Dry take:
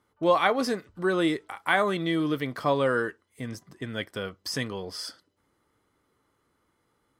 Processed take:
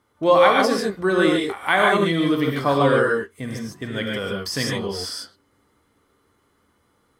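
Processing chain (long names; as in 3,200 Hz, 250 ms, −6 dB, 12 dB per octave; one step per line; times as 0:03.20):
reverb whose tail is shaped and stops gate 170 ms rising, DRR −0.5 dB
level +4 dB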